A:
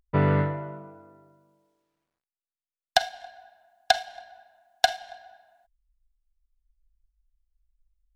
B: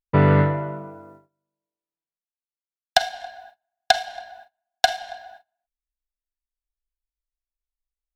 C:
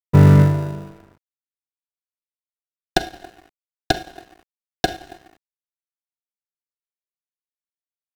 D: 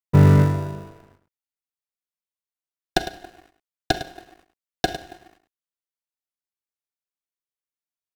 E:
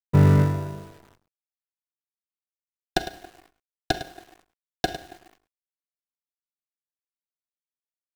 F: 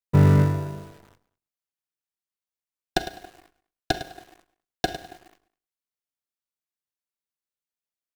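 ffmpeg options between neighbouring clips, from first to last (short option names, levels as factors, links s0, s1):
-filter_complex "[0:a]agate=range=0.0398:threshold=0.00224:ratio=16:detection=peak,asplit=2[s0][s1];[s1]alimiter=limit=0.158:level=0:latency=1:release=146,volume=1.12[s2];[s0][s2]amix=inputs=2:normalize=0,volume=1.12"
-filter_complex "[0:a]asplit=2[s0][s1];[s1]acrusher=samples=41:mix=1:aa=0.000001,volume=0.501[s2];[s0][s2]amix=inputs=2:normalize=0,aeval=exprs='sgn(val(0))*max(abs(val(0))-0.00708,0)':c=same,lowshelf=f=250:g=11,volume=0.631"
-af "aecho=1:1:105:0.237,volume=0.75"
-af "acrusher=bits=9:dc=4:mix=0:aa=0.000001,volume=0.708"
-filter_complex "[0:a]asplit=2[s0][s1];[s1]adelay=204.1,volume=0.0631,highshelf=f=4000:g=-4.59[s2];[s0][s2]amix=inputs=2:normalize=0"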